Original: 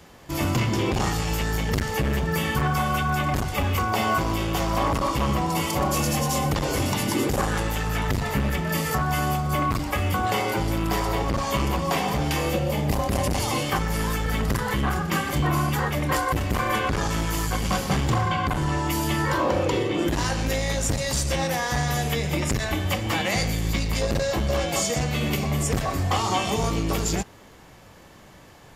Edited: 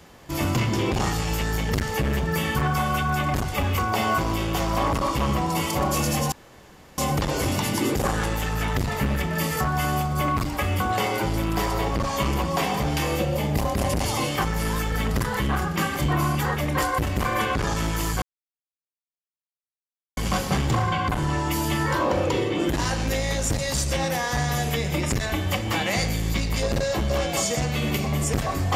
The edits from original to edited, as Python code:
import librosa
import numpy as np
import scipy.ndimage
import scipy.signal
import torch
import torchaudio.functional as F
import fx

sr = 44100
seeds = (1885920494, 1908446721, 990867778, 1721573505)

y = fx.edit(x, sr, fx.insert_room_tone(at_s=6.32, length_s=0.66),
    fx.insert_silence(at_s=17.56, length_s=1.95), tone=tone)